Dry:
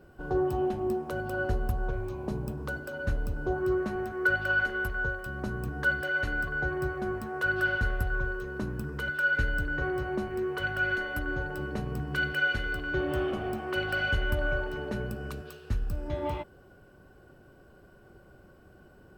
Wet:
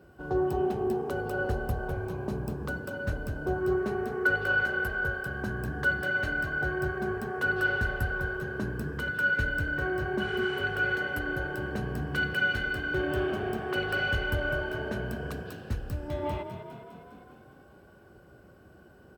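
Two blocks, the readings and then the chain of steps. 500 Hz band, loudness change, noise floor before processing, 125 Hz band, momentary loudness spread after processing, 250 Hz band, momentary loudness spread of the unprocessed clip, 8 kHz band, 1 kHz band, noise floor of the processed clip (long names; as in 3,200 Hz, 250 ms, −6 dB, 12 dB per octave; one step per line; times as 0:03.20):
+1.0 dB, +0.5 dB, −56 dBFS, +0.5 dB, 8 LU, +0.5 dB, 8 LU, can't be measured, +0.5 dB, −55 dBFS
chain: high-pass filter 50 Hz 24 dB per octave
healed spectral selection 0:10.22–0:10.57, 970–9,700 Hz after
echo with shifted repeats 203 ms, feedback 63%, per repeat +31 Hz, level −9.5 dB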